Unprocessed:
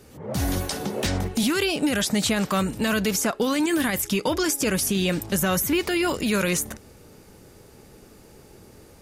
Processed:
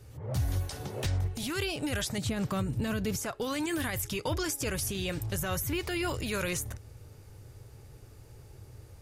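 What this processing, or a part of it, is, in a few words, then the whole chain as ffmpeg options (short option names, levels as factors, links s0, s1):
car stereo with a boomy subwoofer: -filter_complex "[0:a]asettb=1/sr,asplit=3[s0][s1][s2];[s0]atrim=end=2.184[s3];[s1]atrim=start=2.18:end=3.16,asetpts=PTS-STARTPTS,afade=t=in:d=0.004:c=qsin,afade=t=out:st=0.976:d=0.004:c=qsin,equalizer=f=200:t=o:w=2.2:g=11.5[s4];[s2]atrim=start=3.156[s5];[s3][s4]acrossfade=d=0.004:c1=hsin:c2=qsin[s6];[s6][s5]acrossfade=d=0.004:c1=qsin:c2=hsin,lowshelf=f=150:t=q:w=3:g=8.5,alimiter=limit=0.2:level=0:latency=1:release=472,volume=0.422"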